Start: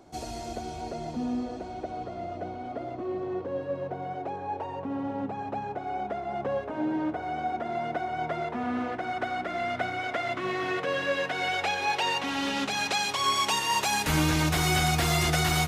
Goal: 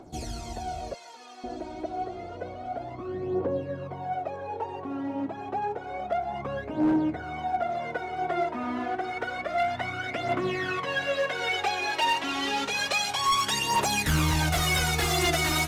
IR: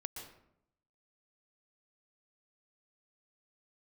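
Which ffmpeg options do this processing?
-filter_complex "[0:a]asettb=1/sr,asplit=3[link_01][link_02][link_03];[link_01]atrim=end=0.944[link_04];[link_02]atrim=start=0.94:end=1.44,asetpts=PTS-STARTPTS,afade=type=in:duration=0.004:curve=qsin,afade=type=out:start_time=0.496:duration=0.004:curve=qsin,highpass=1100[link_05];[link_03]atrim=start=1.436[link_06];[link_04][link_05]acrossfade=duration=0.004:curve1=hsin:curve2=qsin[link_07];[link_07][link_06]acrossfade=duration=0.004:curve1=qsin:curve2=hsin,aphaser=in_gain=1:out_gain=1:delay=3.3:decay=0.63:speed=0.29:type=triangular,asoftclip=type=hard:threshold=-18dB,volume=-1dB"

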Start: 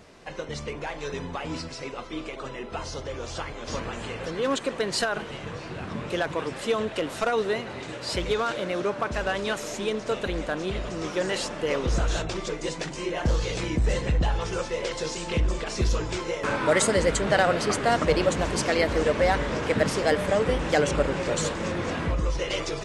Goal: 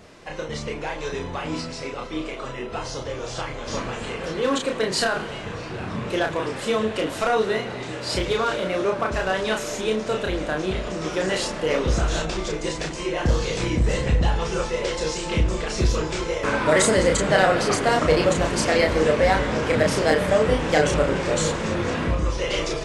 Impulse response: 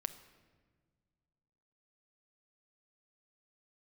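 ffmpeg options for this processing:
-filter_complex "[0:a]asplit=2[link_01][link_02];[1:a]atrim=start_sample=2205,asetrate=33957,aresample=44100,adelay=32[link_03];[link_02][link_03]afir=irnorm=-1:irlink=0,volume=-3dB[link_04];[link_01][link_04]amix=inputs=2:normalize=0,volume=2dB"

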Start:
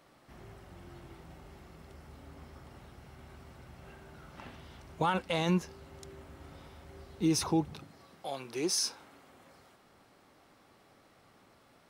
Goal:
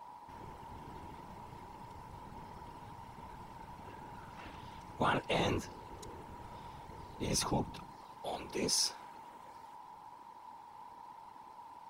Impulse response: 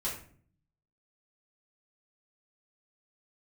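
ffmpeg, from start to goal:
-af "aeval=exprs='val(0)+0.00355*sin(2*PI*920*n/s)':channel_layout=same,afftfilt=real='hypot(re,im)*cos(2*PI*random(0))':imag='hypot(re,im)*sin(2*PI*random(1))':win_size=512:overlap=0.75,afftfilt=real='re*lt(hypot(re,im),0.141)':imag='im*lt(hypot(re,im),0.141)':win_size=1024:overlap=0.75,volume=5dB"

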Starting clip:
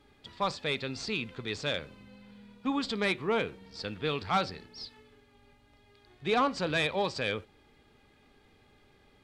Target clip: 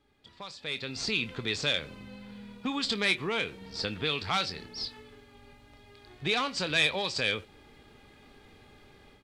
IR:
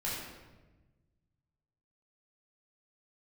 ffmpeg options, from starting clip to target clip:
-filter_complex "[0:a]acrossover=split=2000[link_01][link_02];[link_01]acompressor=threshold=-38dB:ratio=6[link_03];[link_02]asplit=2[link_04][link_05];[link_05]adelay=25,volume=-9dB[link_06];[link_04][link_06]amix=inputs=2:normalize=0[link_07];[link_03][link_07]amix=inputs=2:normalize=0,dynaudnorm=framelen=570:gausssize=3:maxgain=15dB,volume=-8dB"

